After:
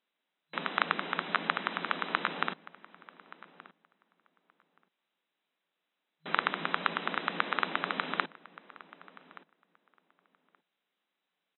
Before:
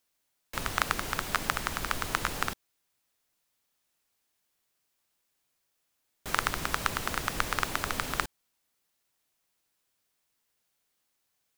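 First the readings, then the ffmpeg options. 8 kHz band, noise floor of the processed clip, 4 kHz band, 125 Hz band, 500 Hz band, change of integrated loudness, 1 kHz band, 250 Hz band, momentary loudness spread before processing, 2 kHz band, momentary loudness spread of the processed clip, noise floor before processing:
under -40 dB, under -85 dBFS, -2.0 dB, -9.0 dB, 0.0 dB, -1.0 dB, 0.0 dB, 0.0 dB, 6 LU, 0.0 dB, 18 LU, -78 dBFS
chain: -filter_complex "[0:a]afftfilt=real='re*between(b*sr/4096,160,4000)':imag='im*between(b*sr/4096,160,4000)':win_size=4096:overlap=0.75,asplit=2[s0][s1];[s1]adelay=1175,lowpass=f=2500:p=1,volume=0.112,asplit=2[s2][s3];[s3]adelay=1175,lowpass=f=2500:p=1,volume=0.15[s4];[s2][s4]amix=inputs=2:normalize=0[s5];[s0][s5]amix=inputs=2:normalize=0"

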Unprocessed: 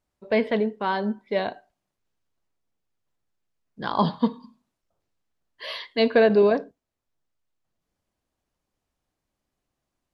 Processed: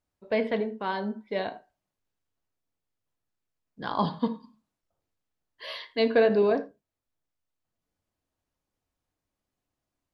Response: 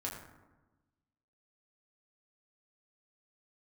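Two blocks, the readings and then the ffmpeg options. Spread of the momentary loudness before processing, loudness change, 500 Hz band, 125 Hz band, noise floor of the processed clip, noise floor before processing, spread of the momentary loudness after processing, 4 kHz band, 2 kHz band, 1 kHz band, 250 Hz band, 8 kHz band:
16 LU, -4.0 dB, -4.0 dB, -5.0 dB, under -85 dBFS, -83 dBFS, 17 LU, -4.5 dB, -4.5 dB, -4.5 dB, -5.0 dB, no reading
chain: -filter_complex "[0:a]asplit=2[s0][s1];[1:a]atrim=start_sample=2205,atrim=end_sample=4410[s2];[s1][s2]afir=irnorm=-1:irlink=0,volume=0.531[s3];[s0][s3]amix=inputs=2:normalize=0,volume=0.447"

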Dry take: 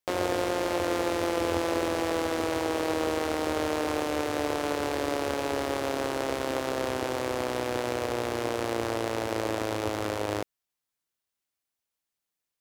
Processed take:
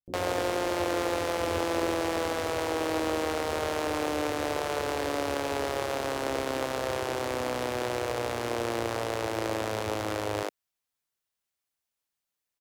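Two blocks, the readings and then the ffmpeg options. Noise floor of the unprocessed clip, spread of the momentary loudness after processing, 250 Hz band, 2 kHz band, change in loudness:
under -85 dBFS, 3 LU, -2.5 dB, 0.0 dB, -1.0 dB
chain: -filter_complex "[0:a]acrossover=split=280[s0][s1];[s1]adelay=60[s2];[s0][s2]amix=inputs=2:normalize=0"

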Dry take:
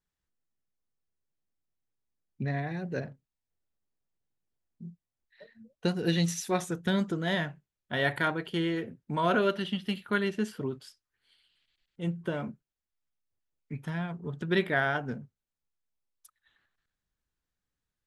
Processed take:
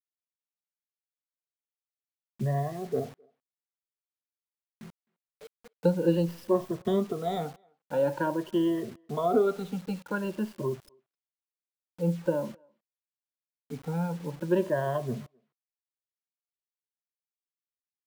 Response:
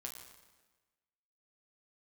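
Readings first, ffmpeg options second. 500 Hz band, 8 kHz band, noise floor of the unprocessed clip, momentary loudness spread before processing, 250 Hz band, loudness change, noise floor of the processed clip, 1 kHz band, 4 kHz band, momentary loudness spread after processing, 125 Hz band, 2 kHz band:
+4.5 dB, no reading, under -85 dBFS, 13 LU, +1.5 dB, +1.0 dB, under -85 dBFS, -0.5 dB, -10.0 dB, 10 LU, +0.5 dB, -10.5 dB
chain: -filter_complex "[0:a]afftfilt=real='re*pow(10,20/40*sin(2*PI*(1.3*log(max(b,1)*sr/1024/100)/log(2)-(0.48)*(pts-256)/sr)))':imag='im*pow(10,20/40*sin(2*PI*(1.3*log(max(b,1)*sr/1024/100)/log(2)-(0.48)*(pts-256)/sr)))':win_size=1024:overlap=0.75,equalizer=f=125:t=o:w=1:g=4,equalizer=f=250:t=o:w=1:g=3,equalizer=f=500:t=o:w=1:g=11,equalizer=f=1000:t=o:w=1:g=9,equalizer=f=2000:t=o:w=1:g=-11,equalizer=f=8000:t=o:w=1:g=-5,acrossover=split=490[s0][s1];[s1]acompressor=threshold=0.1:ratio=6[s2];[s0][s2]amix=inputs=2:normalize=0,acrossover=split=120|1200|4900[s3][s4][s5][s6];[s6]aeval=exprs='abs(val(0))':c=same[s7];[s3][s4][s5][s7]amix=inputs=4:normalize=0,acrusher=bits=6:mix=0:aa=0.000001,asplit=2[s8][s9];[s9]adelay=260,highpass=300,lowpass=3400,asoftclip=type=hard:threshold=0.224,volume=0.0316[s10];[s8][s10]amix=inputs=2:normalize=0,volume=0.376"

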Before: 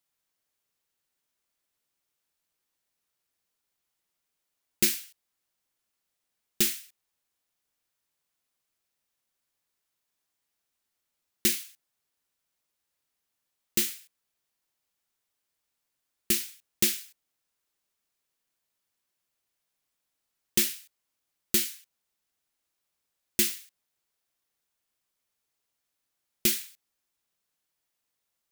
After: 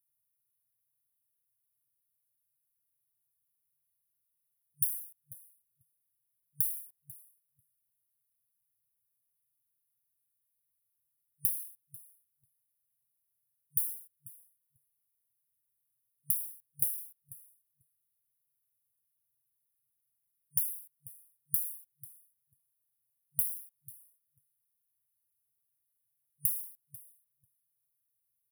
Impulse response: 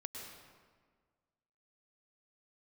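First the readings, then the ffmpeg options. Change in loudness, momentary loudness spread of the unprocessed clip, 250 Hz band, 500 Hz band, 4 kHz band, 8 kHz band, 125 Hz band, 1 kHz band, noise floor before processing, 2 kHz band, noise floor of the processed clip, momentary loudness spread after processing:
-5.5 dB, 13 LU, under -25 dB, under -40 dB, under -40 dB, -8.5 dB, -6.0 dB, under -30 dB, -83 dBFS, under -40 dB, -81 dBFS, 20 LU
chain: -filter_complex "[0:a]afftfilt=real='re*(1-between(b*sr/4096,150,9400))':imag='im*(1-between(b*sr/4096,150,9400))':win_size=4096:overlap=0.75,highpass=f=100:w=0.5412,highpass=f=100:w=1.3066,adynamicequalizer=threshold=0.00158:dfrequency=4000:dqfactor=1.4:tfrequency=4000:tqfactor=1.4:attack=5:release=100:ratio=0.375:range=2:mode=boostabove:tftype=bell,acompressor=threshold=0.0355:ratio=20,asplit=2[s0][s1];[s1]adelay=493,lowpass=f=3400:p=1,volume=0.355,asplit=2[s2][s3];[s3]adelay=493,lowpass=f=3400:p=1,volume=0.16[s4];[s0][s2][s4]amix=inputs=3:normalize=0,volume=1.5"

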